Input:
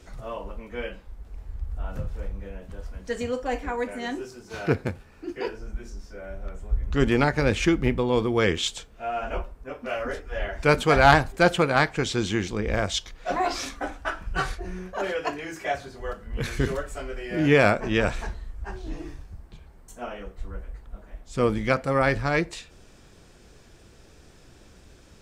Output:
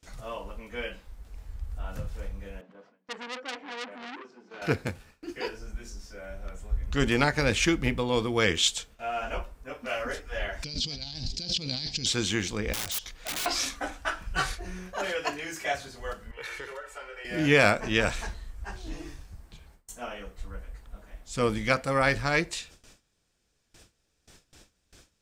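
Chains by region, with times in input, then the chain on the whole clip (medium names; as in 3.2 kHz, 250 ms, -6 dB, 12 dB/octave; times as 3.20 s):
2.61–4.62 s: steep high-pass 190 Hz + tape spacing loss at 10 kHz 37 dB + transformer saturation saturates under 3.1 kHz
10.64–12.06 s: FFT filter 250 Hz 0 dB, 400 Hz -11 dB, 820 Hz -18 dB, 1.4 kHz -27 dB, 4.9 kHz +14 dB, 11 kHz -29 dB + compressor with a negative ratio -34 dBFS
12.73–13.46 s: integer overflow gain 23.5 dB + compression 3:1, threshold -34 dBFS
16.31–17.25 s: three-band isolator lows -22 dB, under 450 Hz, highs -13 dB, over 2.9 kHz + comb 2.2 ms, depth 59% + compression 3:1, threshold -34 dBFS
whole clip: gate with hold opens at -40 dBFS; treble shelf 2.1 kHz +10 dB; band-stop 380 Hz, Q 12; trim -4 dB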